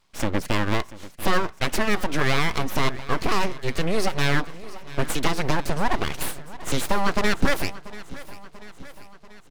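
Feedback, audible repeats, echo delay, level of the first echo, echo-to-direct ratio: 59%, 4, 688 ms, −17.5 dB, −15.5 dB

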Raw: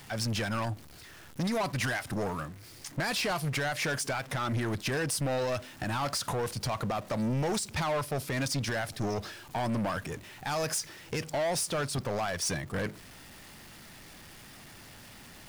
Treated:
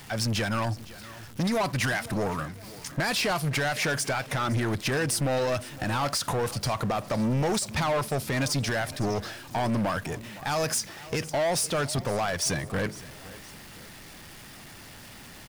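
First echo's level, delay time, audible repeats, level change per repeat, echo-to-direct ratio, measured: −18.5 dB, 511 ms, 2, −7.0 dB, −17.5 dB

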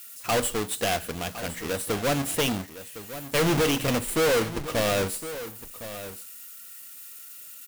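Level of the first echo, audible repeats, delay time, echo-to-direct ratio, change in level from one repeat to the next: −13.5 dB, 1, 1,061 ms, −13.5 dB, repeats not evenly spaced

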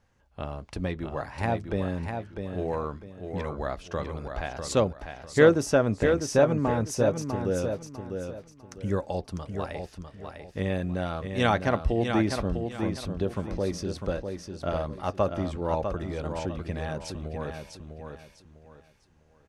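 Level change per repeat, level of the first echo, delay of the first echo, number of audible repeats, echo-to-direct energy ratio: −10.5 dB, −6.5 dB, 650 ms, 3, −6.0 dB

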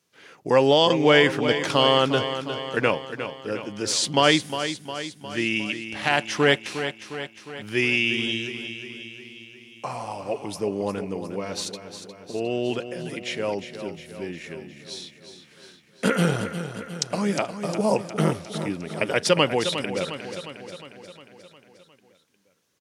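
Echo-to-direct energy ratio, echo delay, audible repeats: −8.0 dB, 357 ms, 6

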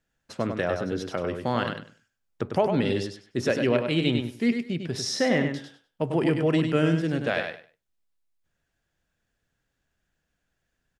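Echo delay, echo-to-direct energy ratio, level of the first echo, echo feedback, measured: 99 ms, −6.0 dB, −6.0 dB, 20%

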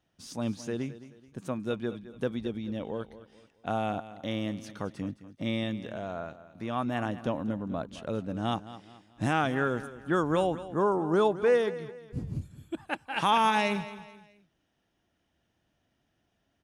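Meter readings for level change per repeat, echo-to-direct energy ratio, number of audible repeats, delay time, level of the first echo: −8.5 dB, −14.5 dB, 3, 215 ms, −15.0 dB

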